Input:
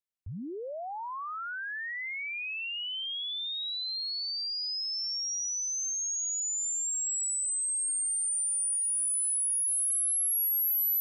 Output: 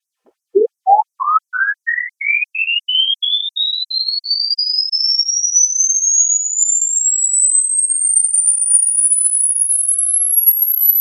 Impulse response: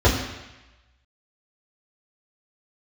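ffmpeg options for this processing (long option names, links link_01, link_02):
-filter_complex "[0:a]asubboost=boost=11.5:cutoff=60[link_01];[1:a]atrim=start_sample=2205,asetrate=79380,aresample=44100[link_02];[link_01][link_02]afir=irnorm=-1:irlink=0,afftfilt=real='re*gte(b*sr/1024,240*pow(5600/240,0.5+0.5*sin(2*PI*2.9*pts/sr)))':imag='im*gte(b*sr/1024,240*pow(5600/240,0.5+0.5*sin(2*PI*2.9*pts/sr)))':win_size=1024:overlap=0.75,volume=6.5dB"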